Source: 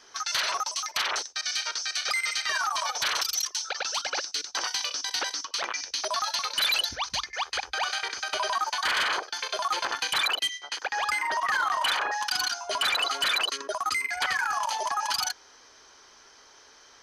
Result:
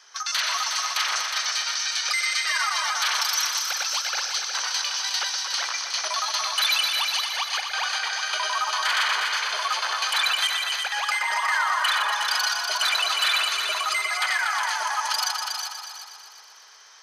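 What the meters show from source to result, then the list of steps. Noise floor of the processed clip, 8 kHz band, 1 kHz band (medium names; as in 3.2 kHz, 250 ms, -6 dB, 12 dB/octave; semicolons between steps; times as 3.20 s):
-46 dBFS, +4.5 dB, +2.5 dB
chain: chunks repeated in reverse 234 ms, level -9 dB; high-pass 910 Hz 12 dB/octave; multi-head delay 121 ms, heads all three, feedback 49%, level -9 dB; trim +2 dB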